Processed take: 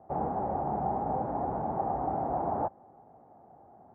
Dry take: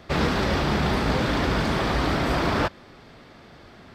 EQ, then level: HPF 84 Hz 12 dB/oct; ladder low-pass 830 Hz, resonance 80%; air absorption 110 m; 0.0 dB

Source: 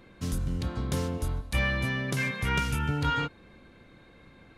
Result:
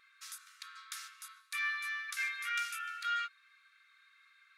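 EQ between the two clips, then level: brick-wall FIR high-pass 1100 Hz; notch 3000 Hz, Q 9.4; -4.0 dB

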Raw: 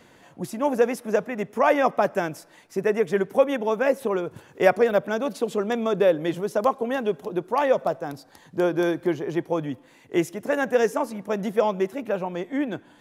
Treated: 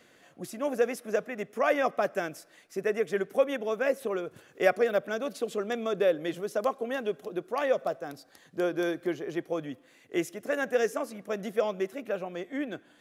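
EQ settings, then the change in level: low shelf 210 Hz -11.5 dB; bell 920 Hz -13.5 dB 0.26 oct; -3.5 dB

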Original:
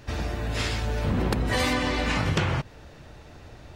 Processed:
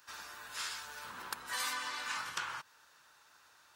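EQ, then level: differentiator; band shelf 1200 Hz +11.5 dB 1.1 oct; -3.5 dB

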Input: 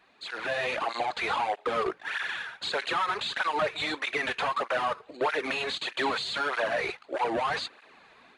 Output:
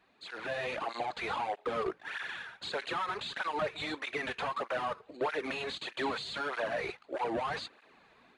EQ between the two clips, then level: low shelf 470 Hz +6.5 dB; -7.5 dB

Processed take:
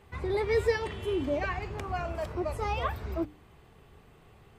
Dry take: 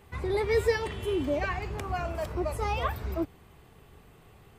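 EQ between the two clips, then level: high shelf 9300 Hz -9.5 dB; notches 60/120/180/240/300 Hz; -1.0 dB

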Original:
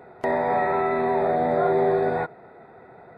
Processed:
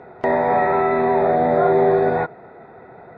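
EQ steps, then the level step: air absorption 130 m; +5.5 dB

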